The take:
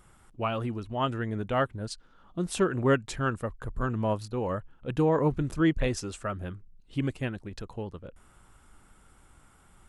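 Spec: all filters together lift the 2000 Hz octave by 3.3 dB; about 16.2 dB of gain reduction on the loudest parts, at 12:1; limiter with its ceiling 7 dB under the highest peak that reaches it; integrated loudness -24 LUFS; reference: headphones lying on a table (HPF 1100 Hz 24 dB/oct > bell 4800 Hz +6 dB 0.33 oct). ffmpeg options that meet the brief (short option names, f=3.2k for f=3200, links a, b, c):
-af "equalizer=f=2k:t=o:g=4.5,acompressor=threshold=-35dB:ratio=12,alimiter=level_in=8.5dB:limit=-24dB:level=0:latency=1,volume=-8.5dB,highpass=f=1.1k:w=0.5412,highpass=f=1.1k:w=1.3066,equalizer=f=4.8k:t=o:w=0.33:g=6,volume=25.5dB"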